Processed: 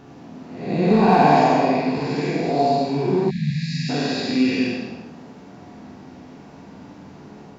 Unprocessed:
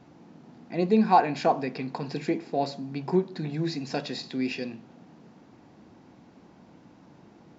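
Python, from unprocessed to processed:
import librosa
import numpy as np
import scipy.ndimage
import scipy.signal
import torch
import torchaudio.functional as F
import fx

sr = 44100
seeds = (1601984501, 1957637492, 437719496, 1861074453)

p1 = fx.spec_blur(x, sr, span_ms=270.0)
p2 = fx.room_flutter(p1, sr, wall_m=8.1, rt60_s=0.39)
p3 = np.clip(10.0 ** (22.5 / 20.0) * p2, -1.0, 1.0) / 10.0 ** (22.5 / 20.0)
p4 = p2 + (p3 * 10.0 ** (-5.0 / 20.0))
p5 = fx.rev_gated(p4, sr, seeds[0], gate_ms=330, shape='falling', drr_db=0.5)
p6 = fx.spec_erase(p5, sr, start_s=3.3, length_s=0.59, low_hz=240.0, high_hz=1600.0)
y = p6 * 10.0 ** (6.0 / 20.0)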